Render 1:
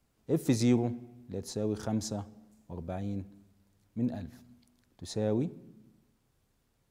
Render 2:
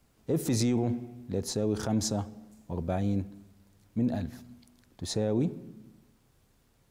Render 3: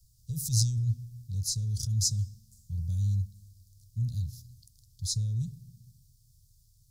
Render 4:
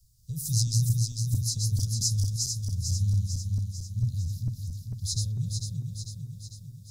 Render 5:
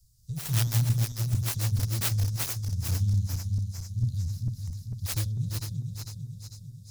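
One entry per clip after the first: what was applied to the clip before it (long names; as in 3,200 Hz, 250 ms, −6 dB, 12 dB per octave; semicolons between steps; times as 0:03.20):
brickwall limiter −25.5 dBFS, peak gain reduction 11 dB; level +7 dB
elliptic band-stop filter 120–4,900 Hz, stop band 40 dB; level +6.5 dB
feedback delay that plays each chunk backwards 224 ms, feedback 74%, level −3 dB
phase distortion by the signal itself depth 0.39 ms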